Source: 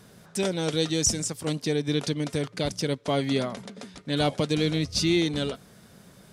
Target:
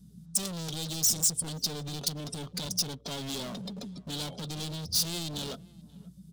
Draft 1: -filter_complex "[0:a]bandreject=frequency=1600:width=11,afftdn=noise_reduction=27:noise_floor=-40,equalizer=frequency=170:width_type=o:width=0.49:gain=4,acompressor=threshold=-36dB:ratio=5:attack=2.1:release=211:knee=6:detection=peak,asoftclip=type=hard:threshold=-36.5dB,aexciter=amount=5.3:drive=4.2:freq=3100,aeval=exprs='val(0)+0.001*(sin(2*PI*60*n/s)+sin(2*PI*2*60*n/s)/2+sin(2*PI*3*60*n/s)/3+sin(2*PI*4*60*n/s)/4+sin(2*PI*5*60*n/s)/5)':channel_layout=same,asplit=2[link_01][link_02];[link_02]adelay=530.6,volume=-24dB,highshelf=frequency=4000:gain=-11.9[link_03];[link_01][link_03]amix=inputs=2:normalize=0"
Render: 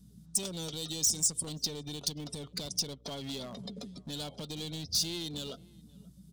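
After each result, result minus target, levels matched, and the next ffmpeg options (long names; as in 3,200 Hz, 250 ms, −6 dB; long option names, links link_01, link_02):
downward compressor: peak gain reduction +7.5 dB; 125 Hz band −2.0 dB
-filter_complex "[0:a]bandreject=frequency=1600:width=11,afftdn=noise_reduction=27:noise_floor=-40,equalizer=frequency=170:width_type=o:width=0.49:gain=4,acompressor=threshold=-24.5dB:ratio=5:attack=2.1:release=211:knee=6:detection=peak,asoftclip=type=hard:threshold=-36.5dB,aexciter=amount=5.3:drive=4.2:freq=3100,aeval=exprs='val(0)+0.001*(sin(2*PI*60*n/s)+sin(2*PI*2*60*n/s)/2+sin(2*PI*3*60*n/s)/3+sin(2*PI*4*60*n/s)/4+sin(2*PI*5*60*n/s)/5)':channel_layout=same,asplit=2[link_01][link_02];[link_02]adelay=530.6,volume=-24dB,highshelf=frequency=4000:gain=-11.9[link_03];[link_01][link_03]amix=inputs=2:normalize=0"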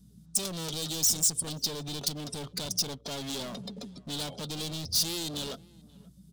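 125 Hz band −3.0 dB
-filter_complex "[0:a]bandreject=frequency=1600:width=11,afftdn=noise_reduction=27:noise_floor=-40,equalizer=frequency=170:width_type=o:width=0.49:gain=10.5,acompressor=threshold=-24.5dB:ratio=5:attack=2.1:release=211:knee=6:detection=peak,asoftclip=type=hard:threshold=-36.5dB,aexciter=amount=5.3:drive=4.2:freq=3100,aeval=exprs='val(0)+0.001*(sin(2*PI*60*n/s)+sin(2*PI*2*60*n/s)/2+sin(2*PI*3*60*n/s)/3+sin(2*PI*4*60*n/s)/4+sin(2*PI*5*60*n/s)/5)':channel_layout=same,asplit=2[link_01][link_02];[link_02]adelay=530.6,volume=-24dB,highshelf=frequency=4000:gain=-11.9[link_03];[link_01][link_03]amix=inputs=2:normalize=0"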